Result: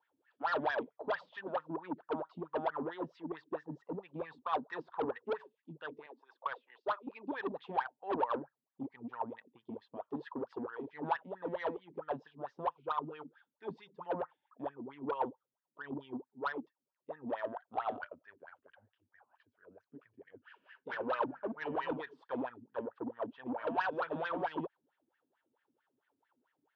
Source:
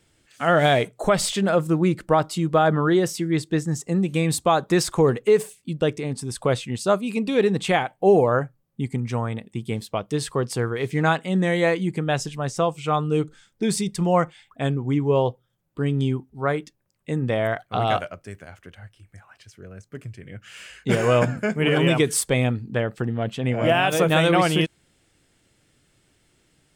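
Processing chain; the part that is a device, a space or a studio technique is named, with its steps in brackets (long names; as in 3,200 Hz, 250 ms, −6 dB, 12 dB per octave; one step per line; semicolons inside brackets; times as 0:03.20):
0:06.06–0:07.07: high-pass filter 410 Hz 24 dB per octave
wah-wah guitar rig (LFO wah 4.5 Hz 230–1,900 Hz, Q 8.7; tube saturation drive 29 dB, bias 0.2; loudspeaker in its box 100–4,200 Hz, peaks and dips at 120 Hz −4 dB, 200 Hz −9 dB, 340 Hz −4 dB, 940 Hz +10 dB, 2,100 Hz −8 dB, 3,400 Hz +3 dB)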